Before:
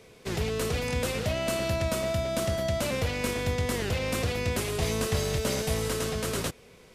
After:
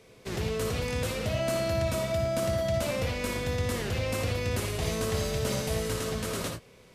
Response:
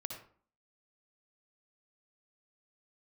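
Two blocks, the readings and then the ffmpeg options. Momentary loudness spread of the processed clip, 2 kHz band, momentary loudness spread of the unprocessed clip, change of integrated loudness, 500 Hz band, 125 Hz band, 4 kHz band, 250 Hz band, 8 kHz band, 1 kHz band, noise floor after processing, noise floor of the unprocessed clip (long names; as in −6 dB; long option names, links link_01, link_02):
4 LU, −2.0 dB, 2 LU, −1.0 dB, −0.5 dB, −0.5 dB, −2.0 dB, −1.5 dB, −2.5 dB, −1.0 dB, −55 dBFS, −53 dBFS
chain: -filter_complex "[1:a]atrim=start_sample=2205,atrim=end_sample=3969[link_01];[0:a][link_01]afir=irnorm=-1:irlink=0"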